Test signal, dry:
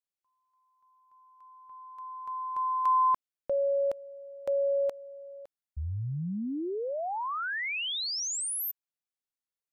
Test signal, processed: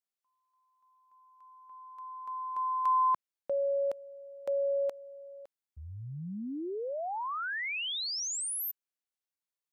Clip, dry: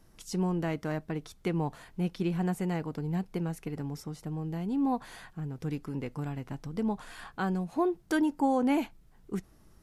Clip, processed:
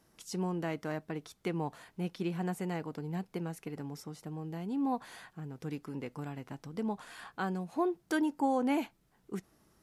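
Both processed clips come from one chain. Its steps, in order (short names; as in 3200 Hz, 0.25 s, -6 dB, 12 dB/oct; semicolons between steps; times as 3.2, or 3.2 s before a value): HPF 210 Hz 6 dB/oct; gain -2 dB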